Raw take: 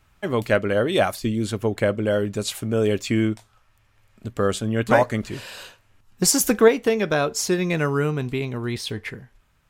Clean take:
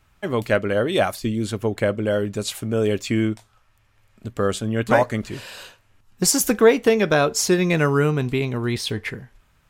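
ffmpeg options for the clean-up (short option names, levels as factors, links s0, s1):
-af "asetnsamples=n=441:p=0,asendcmd='6.68 volume volume 3.5dB',volume=1"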